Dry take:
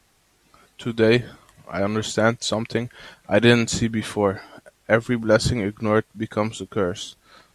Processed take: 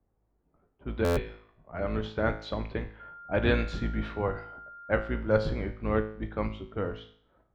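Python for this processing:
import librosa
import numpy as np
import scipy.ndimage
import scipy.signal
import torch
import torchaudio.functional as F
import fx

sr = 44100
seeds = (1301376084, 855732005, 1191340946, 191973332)

y = fx.octave_divider(x, sr, octaves=2, level_db=2.0)
y = fx.env_lowpass(y, sr, base_hz=580.0, full_db=-16.0)
y = fx.low_shelf(y, sr, hz=380.0, db=-6.0)
y = fx.comb_fb(y, sr, f0_hz=54.0, decay_s=0.56, harmonics='all', damping=0.0, mix_pct=70)
y = fx.dmg_tone(y, sr, hz=1400.0, level_db=-42.0, at=(2.99, 5.19), fade=0.02)
y = fx.air_absorb(y, sr, metres=320.0)
y = fx.buffer_glitch(y, sr, at_s=(1.04,), block=512, repeats=10)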